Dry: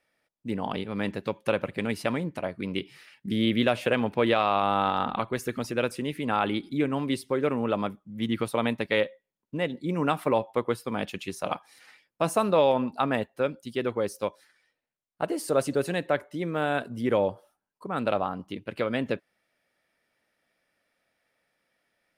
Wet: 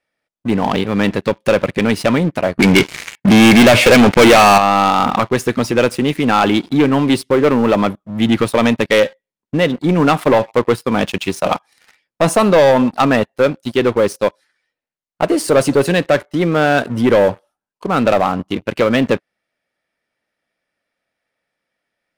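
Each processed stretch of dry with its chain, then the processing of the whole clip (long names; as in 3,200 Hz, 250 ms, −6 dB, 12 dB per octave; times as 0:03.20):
0:02.59–0:04.58: high-pass filter 49 Hz + parametric band 2,200 Hz +9.5 dB 0.2 octaves + leveller curve on the samples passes 3
whole clip: Bessel low-pass filter 9,700 Hz; leveller curve on the samples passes 3; level +4.5 dB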